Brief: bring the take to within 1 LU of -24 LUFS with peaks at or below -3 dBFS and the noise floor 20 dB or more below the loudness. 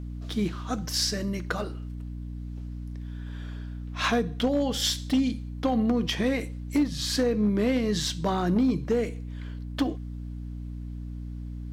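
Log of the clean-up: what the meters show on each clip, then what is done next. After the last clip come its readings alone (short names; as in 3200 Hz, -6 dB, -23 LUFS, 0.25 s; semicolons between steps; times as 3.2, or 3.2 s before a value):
clipped 0.5%; flat tops at -17.5 dBFS; hum 60 Hz; harmonics up to 300 Hz; hum level -33 dBFS; loudness -28.5 LUFS; peak -17.5 dBFS; loudness target -24.0 LUFS
-> clip repair -17.5 dBFS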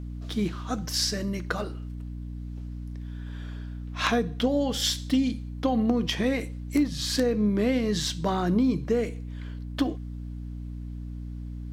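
clipped 0.0%; hum 60 Hz; harmonics up to 300 Hz; hum level -33 dBFS
-> de-hum 60 Hz, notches 5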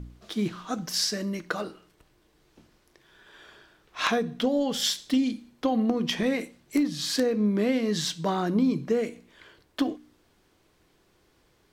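hum none; loudness -27.5 LUFS; peak -8.0 dBFS; loudness target -24.0 LUFS
-> gain +3.5 dB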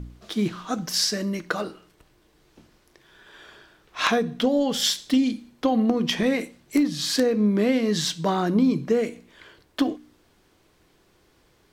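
loudness -24.0 LUFS; peak -4.5 dBFS; noise floor -62 dBFS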